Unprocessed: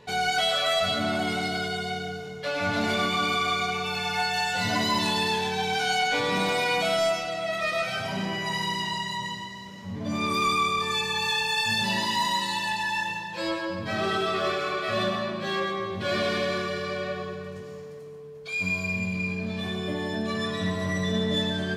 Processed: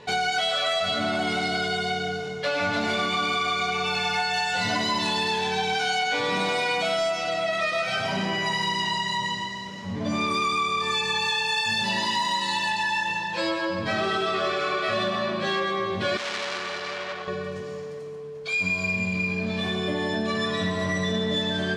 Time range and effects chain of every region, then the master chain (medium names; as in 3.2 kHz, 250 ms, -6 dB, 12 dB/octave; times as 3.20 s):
16.17–17.28 s: bass shelf 490 Hz -10 dB + transformer saturation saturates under 3.9 kHz
whole clip: low-pass 8 kHz 12 dB/octave; bass shelf 190 Hz -6 dB; compression, threshold -29 dBFS; trim +6.5 dB